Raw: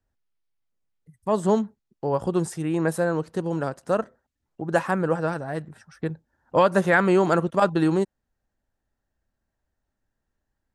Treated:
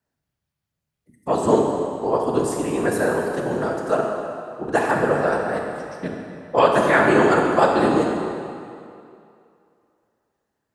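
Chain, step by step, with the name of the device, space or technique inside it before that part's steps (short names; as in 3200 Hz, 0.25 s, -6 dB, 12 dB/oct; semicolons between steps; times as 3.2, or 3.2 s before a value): whispering ghost (whisperiser; HPF 310 Hz 6 dB/oct; reverb RT60 2.5 s, pre-delay 24 ms, DRR 0.5 dB); gain +3 dB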